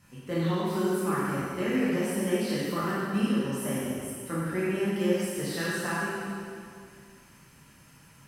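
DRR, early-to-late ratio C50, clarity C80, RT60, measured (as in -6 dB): -9.0 dB, -3.5 dB, -1.5 dB, 2.2 s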